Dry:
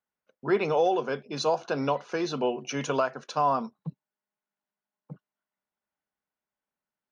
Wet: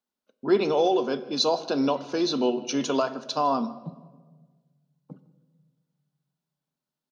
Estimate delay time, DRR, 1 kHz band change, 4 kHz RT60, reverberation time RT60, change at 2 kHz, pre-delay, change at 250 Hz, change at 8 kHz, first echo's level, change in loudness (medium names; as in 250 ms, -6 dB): 158 ms, 11.5 dB, 0.0 dB, 0.85 s, 1.4 s, -2.5 dB, 3 ms, +6.0 dB, no reading, -21.5 dB, +2.5 dB